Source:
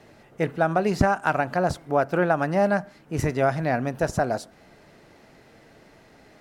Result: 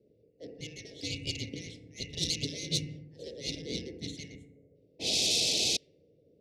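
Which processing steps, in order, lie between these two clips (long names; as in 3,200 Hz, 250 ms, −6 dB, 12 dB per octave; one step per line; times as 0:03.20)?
band-splitting scrambler in four parts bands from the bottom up 2143
0:04.35–0:04.76: gain on a spectral selection 790–6,300 Hz −17 dB
feedback delay network reverb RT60 1.4 s, low-frequency decay 0.8×, high-frequency decay 0.5×, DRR 6.5 dB
0:04.99–0:05.77: sound drawn into the spectrogram noise 610–2,700 Hz −14 dBFS
soft clipping −18.5 dBFS, distortion −8 dB
0:01.83–0:04.15: low-shelf EQ 340 Hz +6 dB
wave folding −20.5 dBFS
elliptic band-stop filter 480–3,600 Hz, stop band 80 dB
low-pass that shuts in the quiet parts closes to 540 Hz, open at −25 dBFS
high-pass filter 67 Hz
spectral tilt +2 dB per octave
level +3 dB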